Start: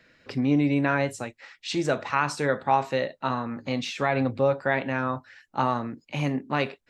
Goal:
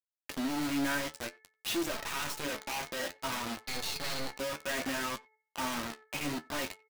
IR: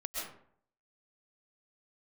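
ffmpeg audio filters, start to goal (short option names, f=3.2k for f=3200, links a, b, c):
-filter_complex "[0:a]volume=29dB,asoftclip=hard,volume=-29dB,aecho=1:1:3.2:0.37,asettb=1/sr,asplit=3[a][b][c];[a]atrim=end=1.914[d];[b]atrim=start=1.91:end=2.45,asetpts=PTS-STARTPTS,afade=t=in:d=0.004:c=qsin,afade=t=out:st=0.536:d=0.004:c=qsin,aeval=exprs='0.0501*(cos(1*acos(clip(val(0)/0.0501,-1,1)))-cos(1*PI/2))+0.0112*(cos(2*acos(clip(val(0)/0.0501,-1,1)))-cos(2*PI/2))':c=same[e];[c]atrim=start=2.446[f];[d][e]acrossfade=d=0.004:c1=hsin:c2=qsin[g];[g][f]acrossfade=d=0.004:c1=qsin:c2=hsin,equalizer=f=2.5k:w=0.96:g=5,acrusher=bits=4:mix=0:aa=0.000001,asettb=1/sr,asplit=3[h][i][j];[h]atrim=end=3.594[k];[i]atrim=start=3.59:end=4.36,asetpts=PTS-STARTPTS,afade=t=in:d=0.004:c=qsin,afade=t=out:st=0.766:d=0.004:c=qsin,aeval=exprs='0.0708*(cos(1*acos(clip(val(0)/0.0708,-1,1)))-cos(1*PI/2))+0.0316*(cos(8*acos(clip(val(0)/0.0708,-1,1)))-cos(8*PI/2))':c=same[l];[j]atrim=start=4.356[m];[k][l]acrossfade=d=0.004:c1=hsin:c2=qsin[n];[n][m]acrossfade=d=0.004:c1=qsin:c2=hsin,bandreject=f=4.3k:w=11,bandreject=f=435.2:t=h:w=4,bandreject=f=870.4:t=h:w=4,bandreject=f=1.3056k:t=h:w=4,bandreject=f=1.7408k:t=h:w=4,bandreject=f=2.176k:t=h:w=4,aeval=exprs='0.133*sin(PI/2*2.82*val(0)/0.133)':c=same,asplit=2[o][p];[p]adelay=90,highpass=300,lowpass=3.4k,asoftclip=type=hard:threshold=-25.5dB,volume=-24dB[q];[o][q]amix=inputs=2:normalize=0,flanger=delay=8.7:depth=5.9:regen=47:speed=0.57:shape=triangular,volume=-7dB"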